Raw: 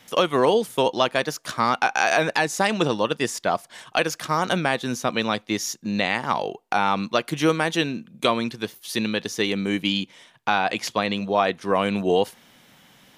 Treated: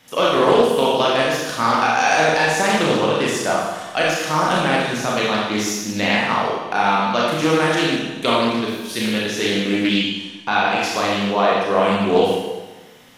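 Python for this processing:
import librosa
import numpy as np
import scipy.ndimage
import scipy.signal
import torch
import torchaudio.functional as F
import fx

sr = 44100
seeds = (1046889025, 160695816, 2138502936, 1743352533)

y = fx.rev_schroeder(x, sr, rt60_s=1.2, comb_ms=26, drr_db=-5.0)
y = fx.doppler_dist(y, sr, depth_ms=0.23)
y = F.gain(torch.from_numpy(y), -1.0).numpy()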